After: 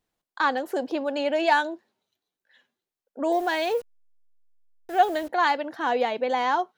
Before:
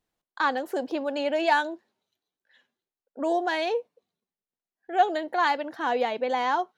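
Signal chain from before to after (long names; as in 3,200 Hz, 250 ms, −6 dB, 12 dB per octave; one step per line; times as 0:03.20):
0:03.32–0:05.29: hold until the input has moved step −43 dBFS
level +1.5 dB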